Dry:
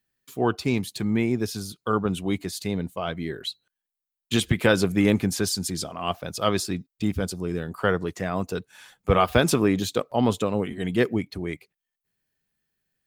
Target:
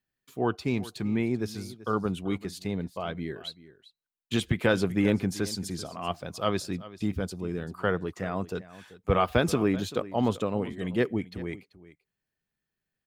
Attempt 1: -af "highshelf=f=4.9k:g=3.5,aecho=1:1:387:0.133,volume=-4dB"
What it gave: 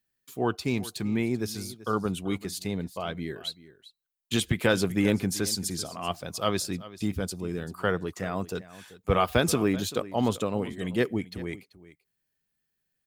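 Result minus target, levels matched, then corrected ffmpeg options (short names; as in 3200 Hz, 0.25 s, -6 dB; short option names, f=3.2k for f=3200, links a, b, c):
8000 Hz band +7.5 dB
-af "highshelf=f=4.9k:g=-7.5,aecho=1:1:387:0.133,volume=-4dB"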